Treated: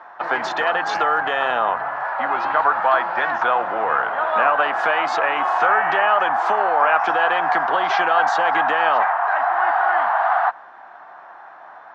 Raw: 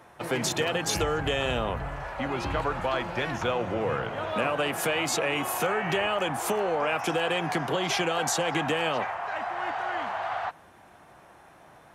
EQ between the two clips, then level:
high-pass filter 310 Hz 12 dB per octave
low-pass filter 4,700 Hz 24 dB per octave
flat-topped bell 1,100 Hz +14 dB
0.0 dB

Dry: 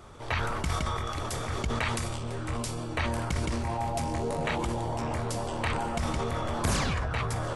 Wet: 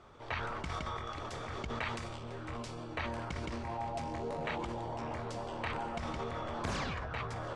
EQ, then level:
high-frequency loss of the air 110 metres
low-shelf EQ 190 Hz −7 dB
−5.5 dB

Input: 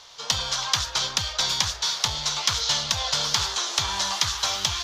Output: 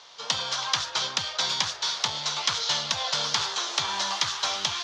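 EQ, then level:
Bessel high-pass filter 180 Hz, order 4
high-frequency loss of the air 74 metres
0.0 dB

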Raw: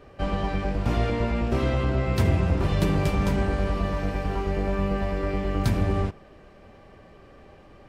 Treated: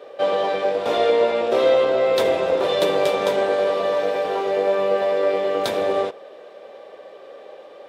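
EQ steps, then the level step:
high-pass with resonance 510 Hz, resonance Q 4.2
parametric band 3,600 Hz +11.5 dB 0.27 octaves
+4.0 dB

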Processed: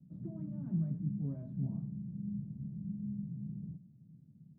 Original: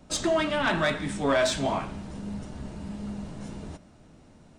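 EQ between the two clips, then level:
flat-topped band-pass 150 Hz, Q 2
+1.5 dB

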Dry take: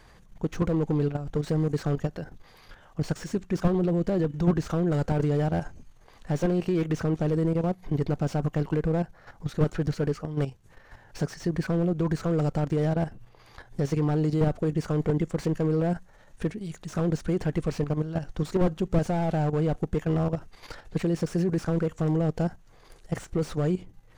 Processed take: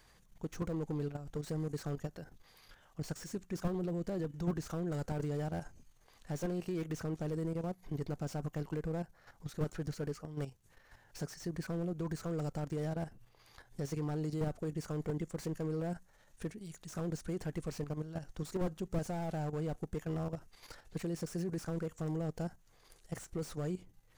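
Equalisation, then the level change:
dynamic equaliser 3,200 Hz, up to −4 dB, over −53 dBFS, Q 1
first-order pre-emphasis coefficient 0.8
high-shelf EQ 4,700 Hz −5.5 dB
+2.0 dB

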